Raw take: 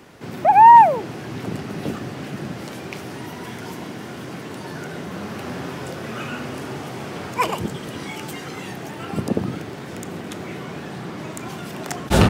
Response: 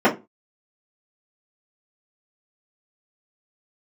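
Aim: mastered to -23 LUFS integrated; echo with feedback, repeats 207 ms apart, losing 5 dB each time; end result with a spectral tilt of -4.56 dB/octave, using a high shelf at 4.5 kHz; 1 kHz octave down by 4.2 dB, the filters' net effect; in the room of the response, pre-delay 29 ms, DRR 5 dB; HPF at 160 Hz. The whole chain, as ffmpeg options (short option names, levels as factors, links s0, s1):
-filter_complex "[0:a]highpass=160,equalizer=f=1000:t=o:g=-4.5,highshelf=f=4500:g=-4,aecho=1:1:207|414|621|828|1035|1242|1449:0.562|0.315|0.176|0.0988|0.0553|0.031|0.0173,asplit=2[s0][s1];[1:a]atrim=start_sample=2205,adelay=29[s2];[s1][s2]afir=irnorm=-1:irlink=0,volume=0.0447[s3];[s0][s3]amix=inputs=2:normalize=0"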